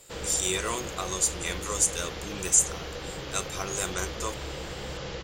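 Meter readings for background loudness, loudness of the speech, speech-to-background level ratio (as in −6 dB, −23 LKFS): −37.0 LKFS, −27.5 LKFS, 9.5 dB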